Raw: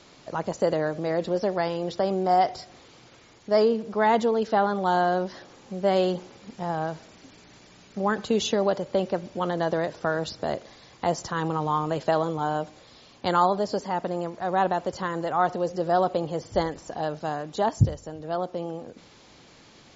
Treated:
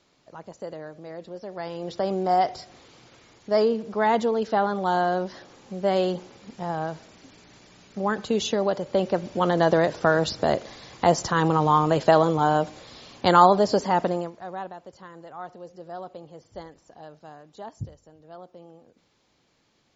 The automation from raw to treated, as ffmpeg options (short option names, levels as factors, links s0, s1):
-af "volume=2,afade=t=in:st=1.46:d=0.64:silence=0.251189,afade=t=in:st=8.75:d=0.9:silence=0.473151,afade=t=out:st=14.03:d=0.29:silence=0.237137,afade=t=out:st=14.32:d=0.41:silence=0.375837"